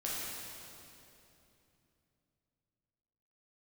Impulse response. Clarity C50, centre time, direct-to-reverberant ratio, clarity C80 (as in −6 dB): −3.0 dB, 171 ms, −7.0 dB, −1.0 dB